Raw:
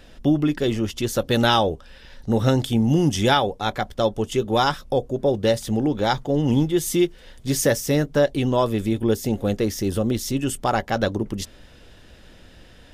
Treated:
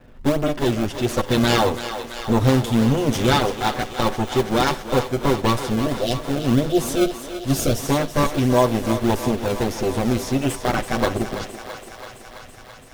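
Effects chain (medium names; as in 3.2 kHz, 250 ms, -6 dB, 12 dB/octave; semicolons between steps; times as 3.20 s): comb filter that takes the minimum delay 8 ms; level-controlled noise filter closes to 1.6 kHz, open at -20.5 dBFS; spectral selection erased 5.62–7.80 s, 740–2600 Hz; in parallel at -5.5 dB: decimation with a swept rate 27×, swing 160% 1.6 Hz; on the sum: thinning echo 332 ms, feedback 78%, high-pass 380 Hz, level -10 dB; on a send at -19.5 dB: reverberation RT60 0.40 s, pre-delay 48 ms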